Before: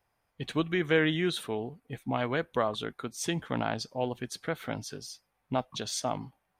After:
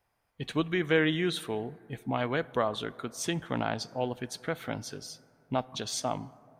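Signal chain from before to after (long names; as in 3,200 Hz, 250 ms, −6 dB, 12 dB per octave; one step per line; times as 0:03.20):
dense smooth reverb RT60 3 s, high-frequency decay 0.3×, DRR 19.5 dB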